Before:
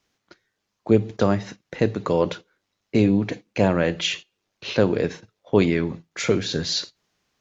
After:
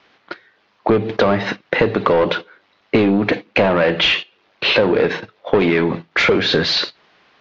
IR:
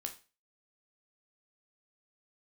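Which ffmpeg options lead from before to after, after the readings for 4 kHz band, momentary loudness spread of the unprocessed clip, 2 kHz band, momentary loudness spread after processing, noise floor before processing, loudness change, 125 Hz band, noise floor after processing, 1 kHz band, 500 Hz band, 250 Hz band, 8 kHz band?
+9.5 dB, 13 LU, +12.5 dB, 11 LU, -78 dBFS, +6.0 dB, +0.5 dB, -60 dBFS, +9.5 dB, +6.5 dB, +3.0 dB, n/a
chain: -filter_complex "[0:a]asplit=2[a][b];[b]highpass=f=720:p=1,volume=23dB,asoftclip=type=tanh:threshold=-4dB[c];[a][c]amix=inputs=2:normalize=0,lowpass=f=2.1k:p=1,volume=-6dB,acompressor=threshold=-19dB:ratio=6,lowpass=f=4.4k:w=0.5412,lowpass=f=4.4k:w=1.3066,volume=7dB"

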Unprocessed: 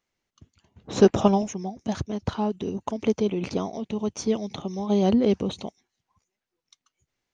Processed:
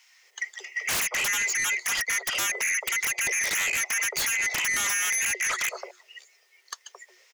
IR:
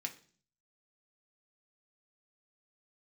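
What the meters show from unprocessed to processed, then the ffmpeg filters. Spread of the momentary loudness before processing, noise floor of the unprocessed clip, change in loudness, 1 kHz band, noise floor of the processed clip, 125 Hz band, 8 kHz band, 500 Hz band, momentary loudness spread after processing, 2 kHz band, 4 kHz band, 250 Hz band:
12 LU, under -85 dBFS, +0.5 dB, -4.5 dB, -63 dBFS, -22.0 dB, n/a, -18.5 dB, 12 LU, +20.5 dB, +9.0 dB, -27.5 dB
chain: -filter_complex "[0:a]afftfilt=real='real(if(lt(b,272),68*(eq(floor(b/68),0)*2+eq(floor(b/68),1)*0+eq(floor(b/68),2)*3+eq(floor(b/68),3)*1)+mod(b,68),b),0)':imag='imag(if(lt(b,272),68*(eq(floor(b/68),0)*2+eq(floor(b/68),1)*0+eq(floor(b/68),2)*3+eq(floor(b/68),3)*1)+mod(b,68),b),0)':win_size=2048:overlap=0.75,acompressor=threshold=-35dB:ratio=8,afreqshift=360,acrossover=split=810[a][b];[a]adelay=220[c];[c][b]amix=inputs=2:normalize=0,aeval=exprs='0.0708*sin(PI/2*8.91*val(0)/0.0708)':c=same"

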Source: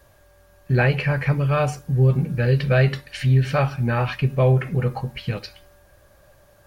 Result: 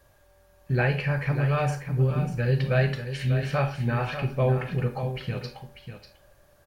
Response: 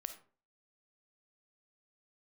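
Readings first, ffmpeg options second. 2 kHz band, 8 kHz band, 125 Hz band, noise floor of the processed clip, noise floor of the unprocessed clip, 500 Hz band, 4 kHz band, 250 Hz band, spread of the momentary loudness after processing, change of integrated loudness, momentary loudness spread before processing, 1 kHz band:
-4.5 dB, n/a, -5.5 dB, -60 dBFS, -55 dBFS, -5.0 dB, -4.5 dB, -5.0 dB, 10 LU, -5.5 dB, 10 LU, -4.0 dB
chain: -filter_complex "[0:a]aecho=1:1:594:0.335[a];[1:a]atrim=start_sample=2205,asetrate=57330,aresample=44100[b];[a][b]afir=irnorm=-1:irlink=0"

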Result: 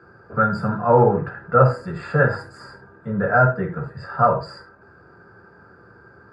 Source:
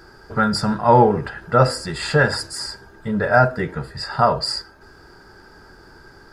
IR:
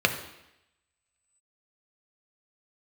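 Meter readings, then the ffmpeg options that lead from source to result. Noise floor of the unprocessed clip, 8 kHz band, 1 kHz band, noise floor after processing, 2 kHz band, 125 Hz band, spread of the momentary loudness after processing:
-47 dBFS, under -20 dB, -1.5 dB, -50 dBFS, -2.0 dB, +1.0 dB, 15 LU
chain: -filter_complex "[0:a]highshelf=f=2k:t=q:w=1.5:g=-14[a];[1:a]atrim=start_sample=2205,afade=t=out:st=0.14:d=0.01,atrim=end_sample=6615[b];[a][b]afir=irnorm=-1:irlink=0,volume=-15.5dB"

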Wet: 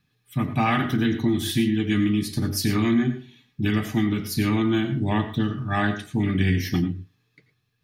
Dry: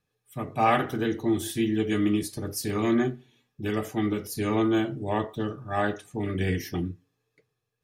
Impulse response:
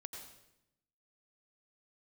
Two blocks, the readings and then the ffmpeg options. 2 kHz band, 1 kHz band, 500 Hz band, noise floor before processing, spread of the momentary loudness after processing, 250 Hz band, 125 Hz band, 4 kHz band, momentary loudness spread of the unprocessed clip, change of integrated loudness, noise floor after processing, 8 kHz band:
+4.5 dB, -0.5 dB, -2.5 dB, -80 dBFS, 6 LU, +4.5 dB, +8.0 dB, +7.0 dB, 10 LU, +4.0 dB, -71 dBFS, +2.5 dB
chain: -filter_complex "[0:a]equalizer=f=125:t=o:w=1:g=6,equalizer=f=250:t=o:w=1:g=8,equalizer=f=500:t=o:w=1:g=-11,equalizer=f=2k:t=o:w=1:g=4,equalizer=f=4k:t=o:w=1:g=6,equalizer=f=8k:t=o:w=1:g=-5,acompressor=threshold=-24dB:ratio=6,asplit=2[a][b];[1:a]atrim=start_sample=2205,afade=t=out:st=0.17:d=0.01,atrim=end_sample=7938[c];[b][c]afir=irnorm=-1:irlink=0,volume=5dB[d];[a][d]amix=inputs=2:normalize=0"

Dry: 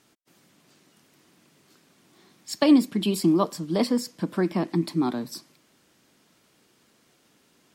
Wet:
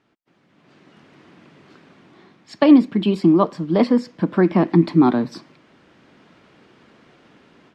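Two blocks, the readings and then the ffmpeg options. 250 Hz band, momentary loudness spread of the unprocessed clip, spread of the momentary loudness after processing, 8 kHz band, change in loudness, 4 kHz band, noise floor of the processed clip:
+7.0 dB, 14 LU, 8 LU, under -10 dB, +7.0 dB, -1.0 dB, -61 dBFS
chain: -af "lowpass=2.5k,dynaudnorm=f=480:g=3:m=14dB,volume=-1dB"

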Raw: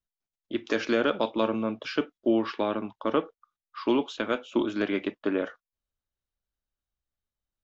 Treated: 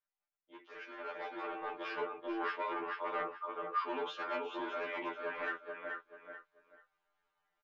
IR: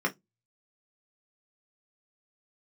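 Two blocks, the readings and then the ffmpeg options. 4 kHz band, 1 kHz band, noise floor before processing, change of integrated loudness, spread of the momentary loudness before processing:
-12.5 dB, -3.5 dB, under -85 dBFS, -11.0 dB, 7 LU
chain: -filter_complex "[0:a]areverse,acompressor=threshold=-37dB:ratio=8,areverse,asplit=2[a][b];[b]adelay=434,lowpass=f=4.2k:p=1,volume=-7.5dB,asplit=2[c][d];[d]adelay=434,lowpass=f=4.2k:p=1,volume=0.24,asplit=2[e][f];[f]adelay=434,lowpass=f=4.2k:p=1,volume=0.24[g];[a][c][e][g]amix=inputs=4:normalize=0,aresample=16000,aeval=exprs='0.0447*sin(PI/2*2*val(0)/0.0447)':c=same,aresample=44100,alimiter=level_in=8.5dB:limit=-24dB:level=0:latency=1:release=82,volume=-8.5dB,aecho=1:1:6.6:0.83,dynaudnorm=f=280:g=9:m=14dB,acrossover=split=530 2400:gain=0.0708 1 0.0794[h][i][j];[h][i][j]amix=inputs=3:normalize=0,afftfilt=real='re*2*eq(mod(b,4),0)':imag='im*2*eq(mod(b,4),0)':win_size=2048:overlap=0.75,volume=-5.5dB"

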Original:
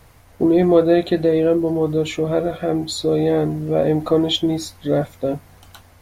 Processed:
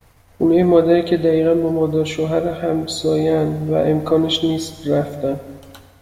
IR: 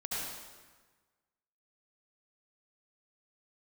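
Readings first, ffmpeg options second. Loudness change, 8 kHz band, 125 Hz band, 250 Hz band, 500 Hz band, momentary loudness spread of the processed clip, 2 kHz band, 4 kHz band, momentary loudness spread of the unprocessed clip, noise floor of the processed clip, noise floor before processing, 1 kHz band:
+1.0 dB, +1.0 dB, +1.5 dB, +1.0 dB, +1.0 dB, 8 LU, +1.0 dB, +1.0 dB, 8 LU, -50 dBFS, -49 dBFS, +1.5 dB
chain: -filter_complex "[0:a]agate=range=-33dB:threshold=-44dB:ratio=3:detection=peak,asplit=2[a][b];[1:a]atrim=start_sample=2205[c];[b][c]afir=irnorm=-1:irlink=0,volume=-14dB[d];[a][d]amix=inputs=2:normalize=0"

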